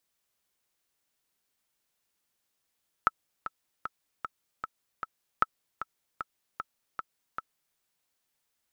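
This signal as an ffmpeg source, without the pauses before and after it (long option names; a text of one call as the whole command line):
ffmpeg -f lavfi -i "aevalsrc='pow(10,(-8.5-12*gte(mod(t,6*60/153),60/153))/20)*sin(2*PI*1310*mod(t,60/153))*exp(-6.91*mod(t,60/153)/0.03)':duration=4.7:sample_rate=44100" out.wav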